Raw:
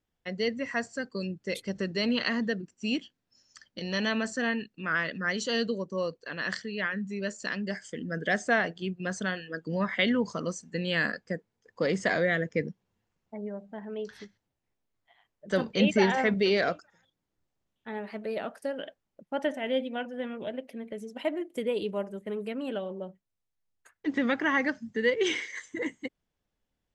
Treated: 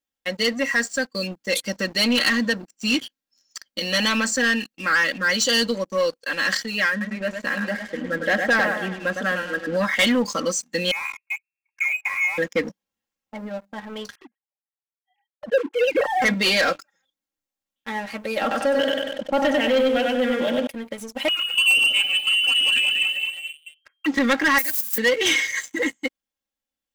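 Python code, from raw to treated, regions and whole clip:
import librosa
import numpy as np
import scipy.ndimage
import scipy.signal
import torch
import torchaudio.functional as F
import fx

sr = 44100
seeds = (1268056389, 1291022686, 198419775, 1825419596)

y = fx.chain(x, sr, fx.lowpass(hz=1800.0, slope=12),
    fx.echo_warbled(ms=105, feedback_pct=48, rate_hz=2.8, cents=91, wet_db=-7.0), at=(6.9, 9.77))
y = fx.chain(y, sr, fx.freq_invert(carrier_hz=2700),
    fx.highpass(hz=490.0, slope=12),
    fx.differentiator(), at=(10.91, 12.38))
y = fx.chain(y, sr, fx.sine_speech(),
    fx.peak_eq(hz=2600.0, db=-11.0, octaves=3.0), at=(14.15, 16.22))
y = fx.chain(y, sr, fx.air_absorb(metres=120.0),
    fx.echo_feedback(ms=96, feedback_pct=39, wet_db=-4.0),
    fx.env_flatten(amount_pct=50), at=(18.41, 20.67))
y = fx.chain(y, sr, fx.echo_pitch(ms=109, semitones=-1, count=3, db_per_echo=-6.0),
    fx.freq_invert(carrier_hz=3200), at=(21.28, 24.06))
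y = fx.chain(y, sr, fx.crossing_spikes(level_db=-32.0),
    fx.pre_emphasis(coefficient=0.9), at=(24.58, 24.98))
y = fx.tilt_eq(y, sr, slope=2.5)
y = y + 0.85 * np.pad(y, (int(3.7 * sr / 1000.0), 0))[:len(y)]
y = fx.leveller(y, sr, passes=3)
y = F.gain(torch.from_numpy(y), -3.0).numpy()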